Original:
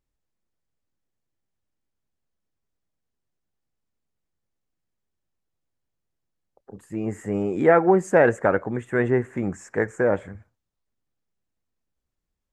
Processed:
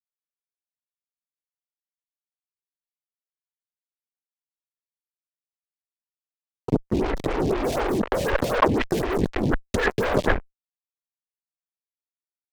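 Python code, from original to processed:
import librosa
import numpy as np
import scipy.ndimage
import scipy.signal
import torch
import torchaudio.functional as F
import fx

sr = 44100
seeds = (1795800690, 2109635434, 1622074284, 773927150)

p1 = np.clip(10.0 ** (20.0 / 20.0) * x, -1.0, 1.0) / 10.0 ** (20.0 / 20.0)
p2 = x + (p1 * 10.0 ** (-11.5 / 20.0))
p3 = fx.lpc_vocoder(p2, sr, seeds[0], excitation='whisper', order=10)
p4 = fx.fuzz(p3, sr, gain_db=33.0, gate_db=-38.0)
p5 = fx.over_compress(p4, sr, threshold_db=-22.0, ratio=-1.0)
p6 = fx.stagger_phaser(p5, sr, hz=4.0)
y = p6 * 10.0 ** (3.0 / 20.0)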